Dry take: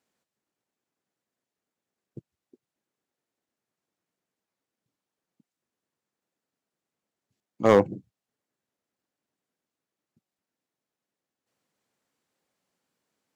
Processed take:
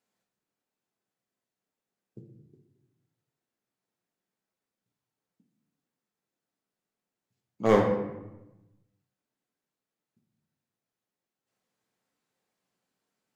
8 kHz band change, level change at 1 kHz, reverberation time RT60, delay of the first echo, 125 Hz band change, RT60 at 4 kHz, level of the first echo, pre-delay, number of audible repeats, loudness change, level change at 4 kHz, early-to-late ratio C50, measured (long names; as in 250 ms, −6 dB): can't be measured, −2.5 dB, 1.0 s, no echo audible, −0.5 dB, 0.60 s, no echo audible, 5 ms, no echo audible, −3.5 dB, −3.0 dB, 4.5 dB